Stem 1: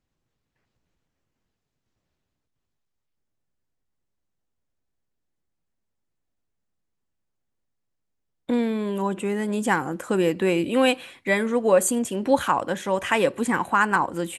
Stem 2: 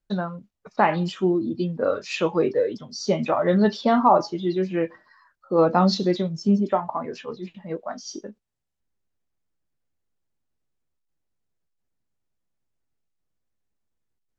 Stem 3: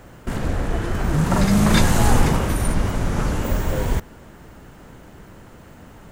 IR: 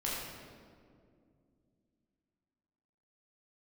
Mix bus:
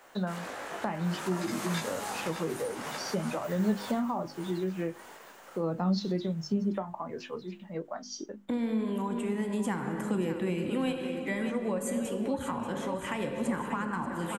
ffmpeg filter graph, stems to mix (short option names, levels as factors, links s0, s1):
-filter_complex "[0:a]volume=0.447,asplit=3[s0][s1][s2];[s1]volume=0.447[s3];[s2]volume=0.355[s4];[1:a]bandreject=f=50:t=h:w=6,bandreject=f=100:t=h:w=6,bandreject=f=150:t=h:w=6,bandreject=f=200:t=h:w=6,bandreject=f=250:t=h:w=6,bandreject=f=300:t=h:w=6,bandreject=f=350:t=h:w=6,adelay=50,volume=0.631[s5];[2:a]highpass=640,flanger=delay=15:depth=5.2:speed=0.66,volume=0.75,asplit=2[s6][s7];[s7]volume=0.335[s8];[3:a]atrim=start_sample=2205[s9];[s3][s9]afir=irnorm=-1:irlink=0[s10];[s4][s8]amix=inputs=2:normalize=0,aecho=0:1:585|1170|1755|2340|2925|3510|4095|4680:1|0.56|0.314|0.176|0.0983|0.0551|0.0308|0.0173[s11];[s0][s5][s6][s10][s11]amix=inputs=5:normalize=0,acrossover=split=230[s12][s13];[s13]acompressor=threshold=0.0224:ratio=5[s14];[s12][s14]amix=inputs=2:normalize=0"